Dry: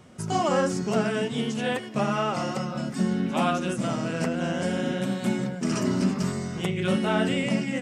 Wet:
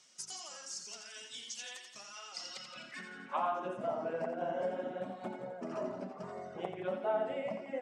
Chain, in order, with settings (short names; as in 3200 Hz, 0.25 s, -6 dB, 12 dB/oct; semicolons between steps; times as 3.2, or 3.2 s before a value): reverb removal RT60 1.4 s; compressor 5:1, threshold -32 dBFS, peak gain reduction 11.5 dB; band-pass sweep 5700 Hz -> 670 Hz, 2.3–3.64; thinning echo 86 ms, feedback 58%, high-pass 420 Hz, level -7 dB; gain +6 dB